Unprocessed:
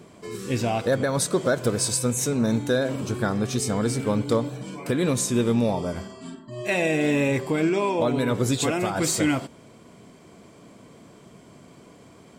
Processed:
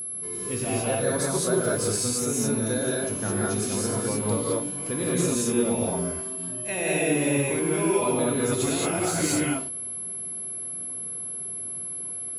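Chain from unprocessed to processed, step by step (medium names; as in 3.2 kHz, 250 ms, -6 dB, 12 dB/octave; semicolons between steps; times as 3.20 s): gated-style reverb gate 240 ms rising, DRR -5 dB; whistle 11 kHz -23 dBFS; trim -8 dB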